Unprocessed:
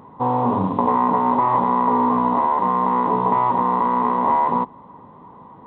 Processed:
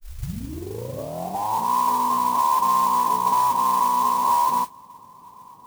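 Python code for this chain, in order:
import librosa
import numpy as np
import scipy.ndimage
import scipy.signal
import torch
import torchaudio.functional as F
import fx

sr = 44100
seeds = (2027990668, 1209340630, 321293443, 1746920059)

y = fx.tape_start_head(x, sr, length_s=1.72)
y = fx.low_shelf(y, sr, hz=150.0, db=9.0)
y = fx.rider(y, sr, range_db=10, speed_s=0.5)
y = fx.ladder_lowpass(y, sr, hz=1100.0, resonance_pct=80)
y = fx.mod_noise(y, sr, seeds[0], snr_db=16)
y = F.gain(torch.from_numpy(y), -4.0).numpy()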